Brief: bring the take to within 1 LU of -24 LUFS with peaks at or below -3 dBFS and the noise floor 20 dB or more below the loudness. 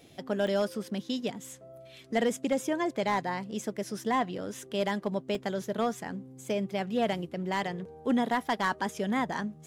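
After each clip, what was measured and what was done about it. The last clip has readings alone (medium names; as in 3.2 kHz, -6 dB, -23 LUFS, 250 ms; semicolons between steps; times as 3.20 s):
clipped samples 0.3%; clipping level -19.0 dBFS; dropouts 2; longest dropout 2.3 ms; loudness -31.5 LUFS; peak level -19.0 dBFS; loudness target -24.0 LUFS
-> clip repair -19 dBFS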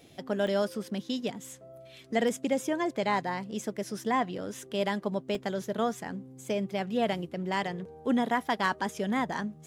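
clipped samples 0.0%; dropouts 2; longest dropout 2.3 ms
-> interpolate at 0.47/5.35 s, 2.3 ms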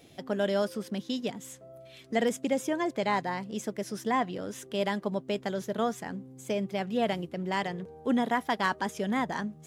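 dropouts 0; loudness -31.0 LUFS; peak level -12.5 dBFS; loudness target -24.0 LUFS
-> trim +7 dB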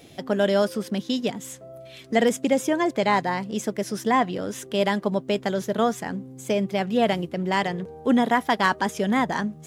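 loudness -24.0 LUFS; peak level -5.5 dBFS; noise floor -46 dBFS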